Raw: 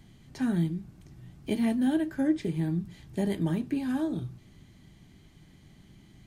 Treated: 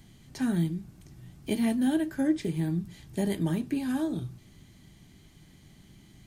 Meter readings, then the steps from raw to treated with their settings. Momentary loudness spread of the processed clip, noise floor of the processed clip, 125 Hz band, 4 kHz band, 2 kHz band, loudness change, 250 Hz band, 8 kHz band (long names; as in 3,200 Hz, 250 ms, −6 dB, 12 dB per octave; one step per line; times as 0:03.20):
12 LU, −56 dBFS, 0.0 dB, +2.5 dB, +1.0 dB, 0.0 dB, 0.0 dB, can't be measured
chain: high-shelf EQ 4,800 Hz +7.5 dB